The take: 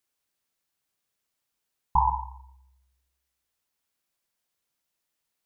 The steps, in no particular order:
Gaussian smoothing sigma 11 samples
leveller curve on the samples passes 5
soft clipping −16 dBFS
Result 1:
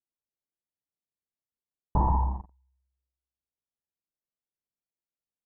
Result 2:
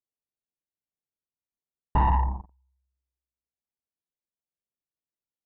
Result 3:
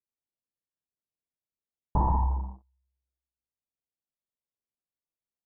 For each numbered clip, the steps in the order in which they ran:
leveller curve on the samples, then soft clipping, then Gaussian smoothing
leveller curve on the samples, then Gaussian smoothing, then soft clipping
soft clipping, then leveller curve on the samples, then Gaussian smoothing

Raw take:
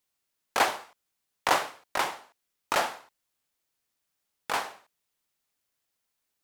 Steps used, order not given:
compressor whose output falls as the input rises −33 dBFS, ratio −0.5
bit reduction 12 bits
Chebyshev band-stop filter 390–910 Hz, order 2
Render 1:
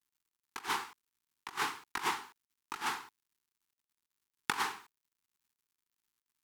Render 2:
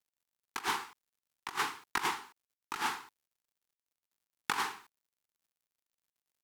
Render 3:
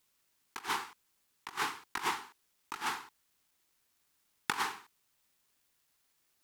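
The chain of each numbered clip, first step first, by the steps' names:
bit reduction, then compressor whose output falls as the input rises, then Chebyshev band-stop filter
Chebyshev band-stop filter, then bit reduction, then compressor whose output falls as the input rises
compressor whose output falls as the input rises, then Chebyshev band-stop filter, then bit reduction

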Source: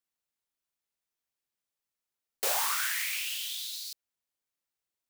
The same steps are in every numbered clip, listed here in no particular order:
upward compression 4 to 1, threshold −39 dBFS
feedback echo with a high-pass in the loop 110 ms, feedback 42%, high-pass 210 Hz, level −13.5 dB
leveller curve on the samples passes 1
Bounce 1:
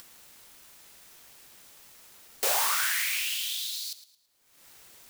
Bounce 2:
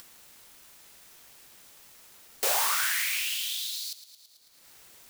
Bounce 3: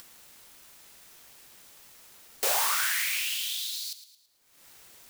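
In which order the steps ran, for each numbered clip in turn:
upward compression, then feedback echo with a high-pass in the loop, then leveller curve on the samples
feedback echo with a high-pass in the loop, then upward compression, then leveller curve on the samples
upward compression, then leveller curve on the samples, then feedback echo with a high-pass in the loop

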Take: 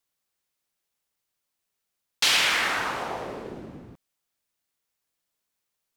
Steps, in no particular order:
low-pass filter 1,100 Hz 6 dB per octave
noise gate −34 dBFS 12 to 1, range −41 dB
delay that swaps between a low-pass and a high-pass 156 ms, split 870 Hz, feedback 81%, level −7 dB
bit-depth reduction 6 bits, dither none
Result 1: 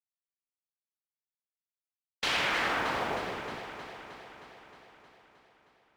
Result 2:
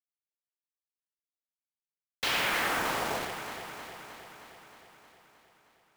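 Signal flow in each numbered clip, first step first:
bit-depth reduction, then low-pass filter, then noise gate, then delay that swaps between a low-pass and a high-pass
low-pass filter, then noise gate, then bit-depth reduction, then delay that swaps between a low-pass and a high-pass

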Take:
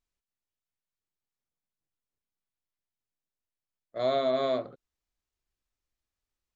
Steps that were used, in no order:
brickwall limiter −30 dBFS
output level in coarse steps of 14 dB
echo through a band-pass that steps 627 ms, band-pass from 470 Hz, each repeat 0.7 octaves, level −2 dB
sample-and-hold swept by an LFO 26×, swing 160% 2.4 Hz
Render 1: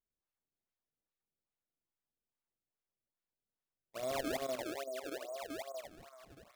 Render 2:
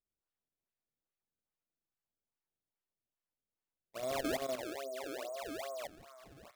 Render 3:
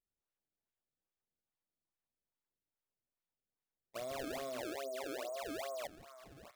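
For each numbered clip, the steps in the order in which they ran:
output level in coarse steps, then brickwall limiter, then echo through a band-pass that steps, then sample-and-hold swept by an LFO
echo through a band-pass that steps, then output level in coarse steps, then sample-and-hold swept by an LFO, then brickwall limiter
echo through a band-pass that steps, then brickwall limiter, then output level in coarse steps, then sample-and-hold swept by an LFO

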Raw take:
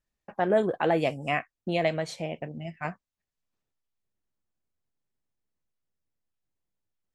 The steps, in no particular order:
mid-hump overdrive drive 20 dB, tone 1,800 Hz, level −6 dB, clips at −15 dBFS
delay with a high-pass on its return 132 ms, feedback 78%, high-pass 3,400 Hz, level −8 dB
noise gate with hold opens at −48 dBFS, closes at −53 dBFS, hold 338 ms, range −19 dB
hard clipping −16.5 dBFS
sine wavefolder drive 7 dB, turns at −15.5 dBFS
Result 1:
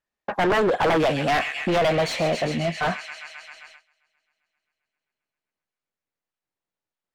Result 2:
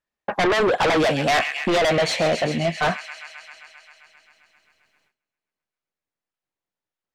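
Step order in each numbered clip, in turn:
delay with a high-pass on its return, then noise gate with hold, then sine wavefolder, then hard clipping, then mid-hump overdrive
hard clipping, then delay with a high-pass on its return, then mid-hump overdrive, then sine wavefolder, then noise gate with hold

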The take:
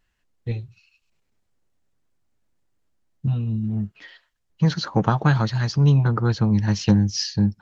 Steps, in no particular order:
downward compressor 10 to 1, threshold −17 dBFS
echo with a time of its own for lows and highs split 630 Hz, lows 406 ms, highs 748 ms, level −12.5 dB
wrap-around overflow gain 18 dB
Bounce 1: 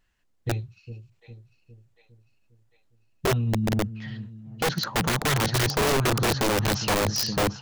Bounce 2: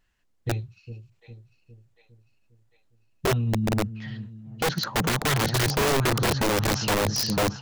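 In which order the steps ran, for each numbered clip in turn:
downward compressor, then echo with a time of its own for lows and highs, then wrap-around overflow
echo with a time of its own for lows and highs, then downward compressor, then wrap-around overflow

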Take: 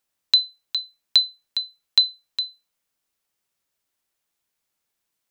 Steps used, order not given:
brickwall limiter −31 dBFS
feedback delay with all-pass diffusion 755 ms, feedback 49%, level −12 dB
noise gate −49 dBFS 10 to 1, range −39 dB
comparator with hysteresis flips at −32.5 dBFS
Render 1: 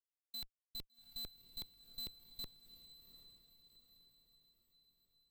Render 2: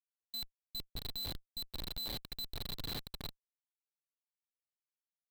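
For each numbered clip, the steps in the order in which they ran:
brickwall limiter, then comparator with hysteresis, then noise gate, then feedback delay with all-pass diffusion
feedback delay with all-pass diffusion, then brickwall limiter, then comparator with hysteresis, then noise gate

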